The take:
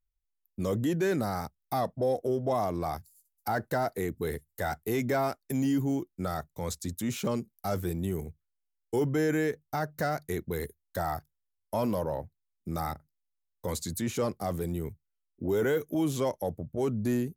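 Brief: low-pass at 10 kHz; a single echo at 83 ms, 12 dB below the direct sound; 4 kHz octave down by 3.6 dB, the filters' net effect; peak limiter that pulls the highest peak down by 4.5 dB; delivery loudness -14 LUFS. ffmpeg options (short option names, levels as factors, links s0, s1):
-af "lowpass=10000,equalizer=f=4000:t=o:g=-4.5,alimiter=limit=0.075:level=0:latency=1,aecho=1:1:83:0.251,volume=9.44"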